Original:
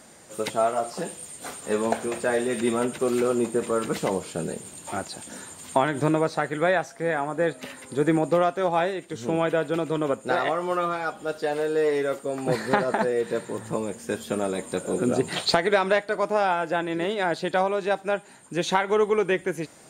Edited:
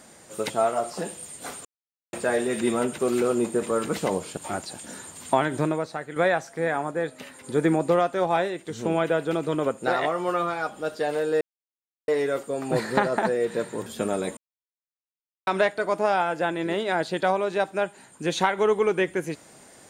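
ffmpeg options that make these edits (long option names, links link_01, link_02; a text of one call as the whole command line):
ffmpeg -i in.wav -filter_complex "[0:a]asplit=11[link_01][link_02][link_03][link_04][link_05][link_06][link_07][link_08][link_09][link_10][link_11];[link_01]atrim=end=1.65,asetpts=PTS-STARTPTS,afade=type=out:start_time=1.646:duration=0.004:curve=hsin[link_12];[link_02]atrim=start=1.65:end=2.13,asetpts=PTS-STARTPTS,volume=0[link_13];[link_03]atrim=start=2.13:end=4.372,asetpts=PTS-STARTPTS,afade=type=in:duration=0.004:curve=hsin[link_14];[link_04]atrim=start=4.798:end=6.59,asetpts=PTS-STARTPTS,afade=type=out:start_time=1.132:duration=0.66:curve=qua:silence=0.398107[link_15];[link_05]atrim=start=6.59:end=7.342,asetpts=PTS-STARTPTS,afade=type=in:duration=0.004:curve=hsin:silence=0.398107[link_16];[link_06]atrim=start=7.338:end=7.872,asetpts=PTS-STARTPTS,volume=-3.5dB[link_17];[link_07]atrim=start=7.868:end=11.84,asetpts=PTS-STARTPTS,afade=type=out:start_time=3.968:duration=0.004:curve=hsin,apad=pad_dur=0.67[link_18];[link_08]atrim=start=11.84:end=13.622,asetpts=PTS-STARTPTS,afade=type=in:duration=0.004:curve=hsin[link_19];[link_09]atrim=start=14.168:end=14.68,asetpts=PTS-STARTPTS,afade=type=out:start_time=0.508:duration=0.004:curve=hsin[link_20];[link_10]atrim=start=14.68:end=15.78,asetpts=PTS-STARTPTS,volume=0[link_21];[link_11]atrim=start=15.78,asetpts=PTS-STARTPTS,afade=type=in:duration=0.004:curve=hsin[link_22];[link_12][link_13][link_14]concat=n=3:v=0:a=1[link_23];[link_15][link_16]concat=n=2:v=0:a=1[link_24];[link_23][link_24]acrossfade=duration=0.004:curve1=hsin:curve2=hsin[link_25];[link_25][link_17]acrossfade=duration=0.004:curve1=hsin:curve2=hsin[link_26];[link_18][link_19]concat=n=2:v=0:a=1[link_27];[link_26][link_27]acrossfade=duration=0.004:curve1=hsin:curve2=hsin[link_28];[link_20][link_21][link_22]concat=n=3:v=0:a=1[link_29];[link_28][link_29]acrossfade=duration=0.004:curve1=hsin:curve2=hsin" out.wav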